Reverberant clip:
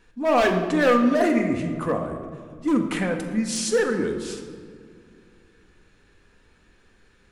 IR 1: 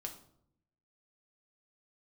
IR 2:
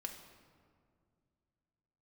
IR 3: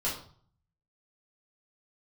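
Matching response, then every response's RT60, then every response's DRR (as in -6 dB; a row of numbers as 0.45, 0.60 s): 2; 0.70, 2.2, 0.50 s; 2.0, 3.0, -7.5 dB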